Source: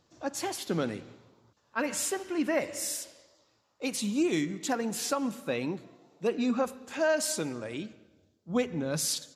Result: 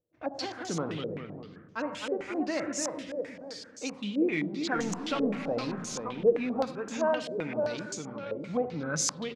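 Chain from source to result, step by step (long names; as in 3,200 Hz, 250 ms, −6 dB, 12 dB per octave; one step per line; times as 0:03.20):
0:04.75–0:05.48: converter with a step at zero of −31.5 dBFS
noise gate −55 dBFS, range −21 dB
on a send: single-tap delay 81 ms −16.5 dB
on the sum: delay with pitch and tempo change per echo 152 ms, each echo −1 semitone, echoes 3, each echo −6 dB
low-shelf EQ 180 Hz +4.5 dB
rectangular room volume 2,700 cubic metres, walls mixed, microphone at 0.49 metres
in parallel at −2 dB: downward compressor, threshold −38 dBFS, peak gain reduction 16.5 dB
on the sum: low-pass on a step sequencer 7.7 Hz 510–6,500 Hz
level −7 dB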